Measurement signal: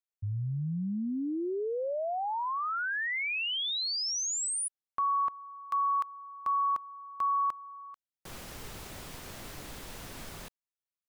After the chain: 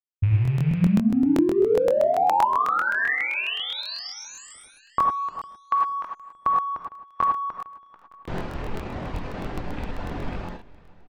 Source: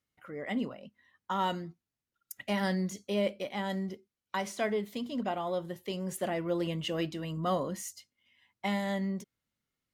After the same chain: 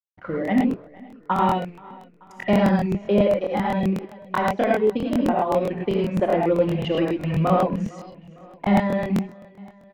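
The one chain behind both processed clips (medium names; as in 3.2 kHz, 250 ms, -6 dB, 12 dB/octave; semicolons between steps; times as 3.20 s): rattle on loud lows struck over -42 dBFS, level -36 dBFS; reverb removal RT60 1.2 s; treble shelf 3.3 kHz -3.5 dB; transient shaper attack +4 dB, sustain -8 dB; in parallel at +1.5 dB: compression, threshold -40 dBFS; on the sum: hysteresis with a dead band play -49 dBFS; tape spacing loss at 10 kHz 35 dB; on a send: feedback delay 456 ms, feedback 56%, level -22 dB; on the sum: gated-style reverb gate 130 ms rising, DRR -1 dB; crackling interface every 0.13 s, samples 1024, repeat, from 0.43 s; trim +8.5 dB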